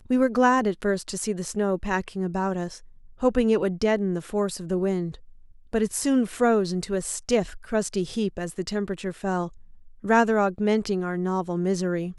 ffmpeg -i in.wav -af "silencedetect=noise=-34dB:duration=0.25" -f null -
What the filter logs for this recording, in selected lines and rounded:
silence_start: 2.77
silence_end: 3.21 | silence_duration: 0.44
silence_start: 5.15
silence_end: 5.73 | silence_duration: 0.59
silence_start: 9.48
silence_end: 10.04 | silence_duration: 0.56